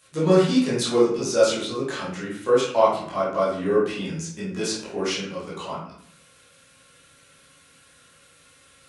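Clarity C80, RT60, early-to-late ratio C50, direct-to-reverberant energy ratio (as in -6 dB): 6.0 dB, 0.60 s, 1.5 dB, -10.0 dB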